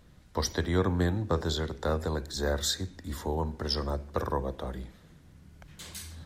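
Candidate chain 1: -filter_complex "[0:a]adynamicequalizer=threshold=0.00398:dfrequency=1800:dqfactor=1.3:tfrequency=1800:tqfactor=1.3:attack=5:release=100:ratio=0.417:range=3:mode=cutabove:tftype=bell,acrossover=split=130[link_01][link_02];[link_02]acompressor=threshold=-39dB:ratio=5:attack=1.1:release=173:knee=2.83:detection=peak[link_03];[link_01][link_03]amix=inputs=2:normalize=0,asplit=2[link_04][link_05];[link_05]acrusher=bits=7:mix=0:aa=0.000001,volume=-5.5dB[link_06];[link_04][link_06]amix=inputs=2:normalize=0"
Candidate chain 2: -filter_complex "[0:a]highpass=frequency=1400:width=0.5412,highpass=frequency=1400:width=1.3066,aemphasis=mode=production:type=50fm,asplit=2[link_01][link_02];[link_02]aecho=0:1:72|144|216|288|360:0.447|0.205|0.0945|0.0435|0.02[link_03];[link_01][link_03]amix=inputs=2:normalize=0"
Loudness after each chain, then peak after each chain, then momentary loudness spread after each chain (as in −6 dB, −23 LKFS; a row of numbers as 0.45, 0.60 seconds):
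−34.0, −30.5 LKFS; −20.0, −11.0 dBFS; 15, 18 LU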